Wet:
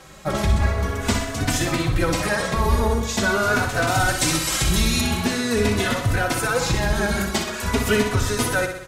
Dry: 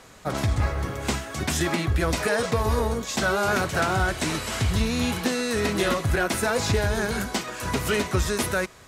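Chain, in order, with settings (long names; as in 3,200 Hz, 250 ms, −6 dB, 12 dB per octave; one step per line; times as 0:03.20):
sub-octave generator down 1 octave, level −4 dB
0:03.87–0:05.01: high-shelf EQ 3,700 Hz +11.5 dB
in parallel at −2 dB: speech leveller within 4 dB 0.5 s
on the sum: repeating echo 62 ms, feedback 54%, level −7.5 dB
barber-pole flanger 3.3 ms +0.44 Hz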